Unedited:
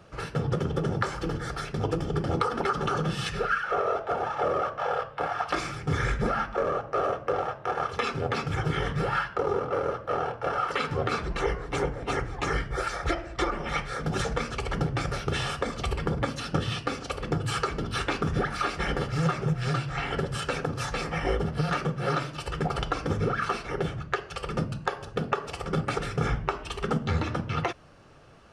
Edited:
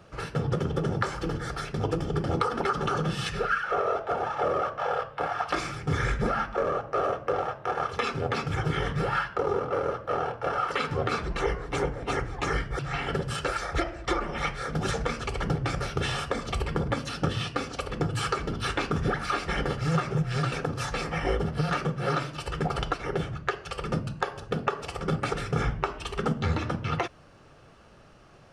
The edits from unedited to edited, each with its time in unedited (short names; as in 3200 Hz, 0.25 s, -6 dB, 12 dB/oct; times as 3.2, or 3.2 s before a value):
19.83–20.52 move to 12.79
22.94–23.59 cut